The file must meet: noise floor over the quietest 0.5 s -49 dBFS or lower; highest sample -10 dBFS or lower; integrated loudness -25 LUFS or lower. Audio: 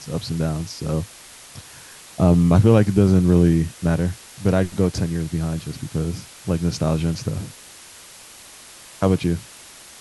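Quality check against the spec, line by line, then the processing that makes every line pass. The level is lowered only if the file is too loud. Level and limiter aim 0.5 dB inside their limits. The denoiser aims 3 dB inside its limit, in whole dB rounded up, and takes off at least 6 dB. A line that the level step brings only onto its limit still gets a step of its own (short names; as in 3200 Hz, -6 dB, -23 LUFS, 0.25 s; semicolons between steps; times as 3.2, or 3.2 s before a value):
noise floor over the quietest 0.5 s -43 dBFS: fail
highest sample -2.5 dBFS: fail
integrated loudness -20.5 LUFS: fail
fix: denoiser 6 dB, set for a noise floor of -43 dBFS; gain -5 dB; limiter -10.5 dBFS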